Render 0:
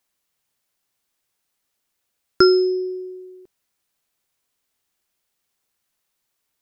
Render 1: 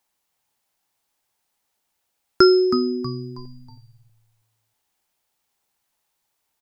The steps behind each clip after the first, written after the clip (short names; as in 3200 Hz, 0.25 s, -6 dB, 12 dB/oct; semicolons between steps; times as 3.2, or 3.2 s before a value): bell 850 Hz +9 dB 0.38 oct; frequency-shifting echo 0.32 s, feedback 37%, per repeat -120 Hz, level -10 dB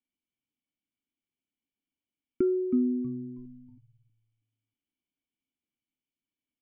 vocal tract filter i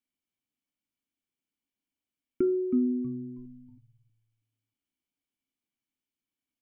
de-hum 77.74 Hz, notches 11